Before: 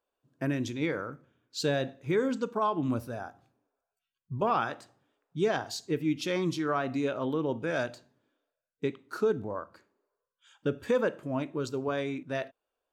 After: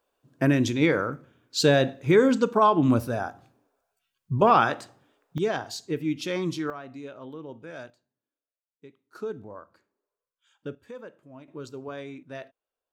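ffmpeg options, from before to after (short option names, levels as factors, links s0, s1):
-af "asetnsamples=n=441:p=0,asendcmd='5.38 volume volume 1dB;6.7 volume volume -10dB;7.9 volume volume -18dB;9.15 volume volume -6.5dB;10.75 volume volume -15dB;11.48 volume volume -6dB',volume=2.82"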